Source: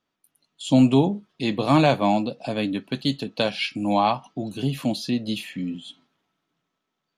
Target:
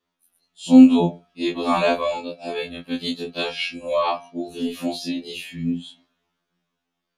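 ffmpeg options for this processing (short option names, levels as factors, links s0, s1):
-af "afftfilt=real='re':imag='-im':win_size=2048:overlap=0.75,bandreject=f=232.8:t=h:w=4,bandreject=f=465.6:t=h:w=4,bandreject=f=698.4:t=h:w=4,bandreject=f=931.2:t=h:w=4,bandreject=f=1164:t=h:w=4,bandreject=f=1396.8:t=h:w=4,bandreject=f=1629.6:t=h:w=4,bandreject=f=1862.4:t=h:w=4,bandreject=f=2095.2:t=h:w=4,bandreject=f=2328:t=h:w=4,bandreject=f=2560.8:t=h:w=4,bandreject=f=2793.6:t=h:w=4,bandreject=f=3026.4:t=h:w=4,bandreject=f=3259.2:t=h:w=4,bandreject=f=3492:t=h:w=4,bandreject=f=3724.8:t=h:w=4,bandreject=f=3957.6:t=h:w=4,bandreject=f=4190.4:t=h:w=4,bandreject=f=4423.2:t=h:w=4,afftfilt=real='re*2*eq(mod(b,4),0)':imag='im*2*eq(mod(b,4),0)':win_size=2048:overlap=0.75,volume=1.68"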